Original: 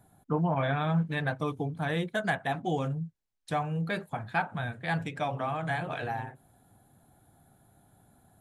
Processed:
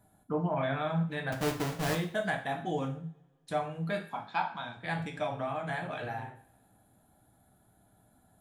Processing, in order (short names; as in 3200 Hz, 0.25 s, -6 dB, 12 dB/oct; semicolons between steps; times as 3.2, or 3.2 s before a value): 1.32–1.95 half-waves squared off; 4.09–4.77 speaker cabinet 250–7000 Hz, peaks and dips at 420 Hz -9 dB, 620 Hz -6 dB, 960 Hz +10 dB, 1800 Hz -7 dB, 3500 Hz +6 dB, 5300 Hz +10 dB; two-slope reverb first 0.44 s, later 1.8 s, from -26 dB, DRR 2.5 dB; gain -4.5 dB